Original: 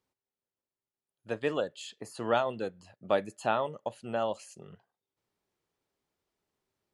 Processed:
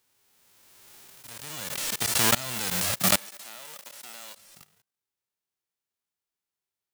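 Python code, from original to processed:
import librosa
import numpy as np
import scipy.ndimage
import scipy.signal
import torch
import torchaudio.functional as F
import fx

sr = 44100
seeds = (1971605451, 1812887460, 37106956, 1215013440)

y = fx.envelope_flatten(x, sr, power=0.1)
y = fx.level_steps(y, sr, step_db=24)
y = fx.highpass(y, sr, hz=370.0, slope=12, at=(3.17, 4.37))
y = fx.pre_swell(y, sr, db_per_s=23.0)
y = y * 10.0 ** (5.0 / 20.0)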